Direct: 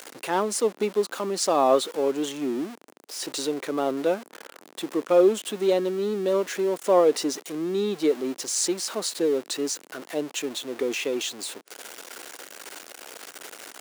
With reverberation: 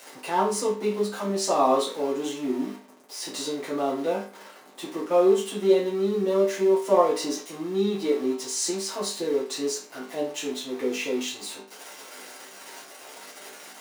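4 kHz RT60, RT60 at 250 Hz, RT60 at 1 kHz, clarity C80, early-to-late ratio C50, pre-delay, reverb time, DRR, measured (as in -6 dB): 0.35 s, 0.40 s, 0.40 s, 12.0 dB, 6.5 dB, 4 ms, 0.40 s, -9.0 dB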